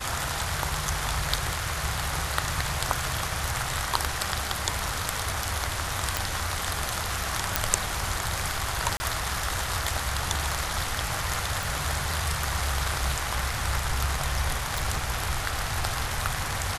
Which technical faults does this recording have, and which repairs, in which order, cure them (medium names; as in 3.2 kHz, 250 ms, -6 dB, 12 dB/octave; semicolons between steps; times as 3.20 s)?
6.17 s: pop
7.56 s: pop
8.97–9.00 s: dropout 30 ms
11.63 s: pop
14.78 s: pop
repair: de-click; interpolate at 8.97 s, 30 ms